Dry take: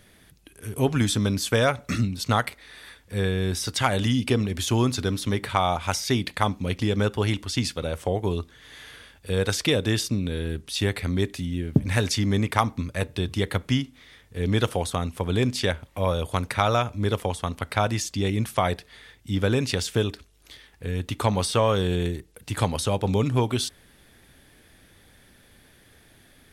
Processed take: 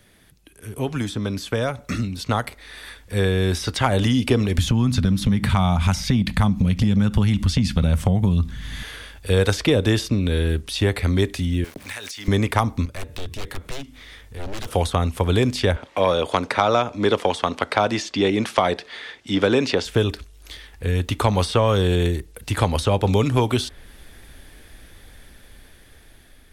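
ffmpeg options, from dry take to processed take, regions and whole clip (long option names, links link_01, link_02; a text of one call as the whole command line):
ffmpeg -i in.wav -filter_complex "[0:a]asettb=1/sr,asplit=3[link_01][link_02][link_03];[link_01]atrim=end=4.584[link_04];[link_02]atrim=start=4.58:end=8.83,asetpts=PTS-STARTPTS,afade=type=in:duration=0.004:curve=qsin,afade=type=out:start_time=4.246:duration=0.004:curve=qsin,lowshelf=frequency=280:width_type=q:width=3:gain=12,acompressor=threshold=-20dB:ratio=3:attack=3.2:release=140:knee=1:detection=peak[link_05];[link_03]atrim=start=8.826[link_06];[link_04][link_05]acrossfade=duration=0.004:curve1=hsin:curve2=qsin[link_07];[link_07][link_06]acrossfade=duration=0.004:curve1=qsin:curve2=hsin,asettb=1/sr,asplit=3[link_08][link_09][link_10];[link_08]atrim=end=11.644[link_11];[link_09]atrim=start=11.64:end=12.28,asetpts=PTS-STARTPTS,afade=type=in:duration=0.004:curve=qsin,afade=type=out:start_time=0.636:duration=0.004:curve=qsin,aeval=exprs='val(0)*gte(abs(val(0)),0.0112)':channel_layout=same,highpass=frequency=1400:poles=1,acompressor=threshold=-35dB:ratio=12:attack=3.2:release=140:knee=1:detection=peak[link_12];[link_10]atrim=start=12.276[link_13];[link_11][link_12]acrossfade=duration=0.004:curve1=hsin:curve2=qsin[link_14];[link_14][link_13]acrossfade=duration=0.004:curve1=qsin:curve2=hsin,asettb=1/sr,asplit=3[link_15][link_16][link_17];[link_15]atrim=end=12.854[link_18];[link_16]atrim=start=12.85:end=14.73,asetpts=PTS-STARTPTS,afade=type=in:duration=0.004:curve=qsin,afade=type=out:start_time=1.876:duration=0.004:curve=qsin,aeval=exprs='0.0596*(abs(mod(val(0)/0.0596+3,4)-2)-1)':channel_layout=same,acompressor=threshold=-42dB:ratio=2.5:attack=3.2:release=140:knee=1:detection=peak[link_19];[link_17]atrim=start=14.726[link_20];[link_18][link_19]acrossfade=duration=0.004:curve1=hsin:curve2=qsin[link_21];[link_21][link_20]acrossfade=duration=0.004:curve1=qsin:curve2=hsin,asettb=1/sr,asplit=3[link_22][link_23][link_24];[link_22]atrim=end=15.764[link_25];[link_23]atrim=start=15.76:end=19.85,asetpts=PTS-STARTPTS,afade=type=in:duration=0.004:curve=qsin,afade=type=out:start_time=4.086:duration=0.004:curve=qsin,acontrast=35,highpass=280,lowpass=5300[link_26];[link_24]atrim=start=19.846[link_27];[link_25][link_26]acrossfade=duration=0.004:curve1=hsin:curve2=qsin[link_28];[link_28][link_27]acrossfade=duration=0.004:curve1=qsin:curve2=hsin,acrossover=split=290|1200|4000[link_29][link_30][link_31][link_32];[link_29]acompressor=threshold=-24dB:ratio=4[link_33];[link_30]acompressor=threshold=-25dB:ratio=4[link_34];[link_31]acompressor=threshold=-36dB:ratio=4[link_35];[link_32]acompressor=threshold=-43dB:ratio=4[link_36];[link_33][link_34][link_35][link_36]amix=inputs=4:normalize=0,asubboost=boost=4:cutoff=60,dynaudnorm=framelen=970:gausssize=5:maxgain=9dB" out.wav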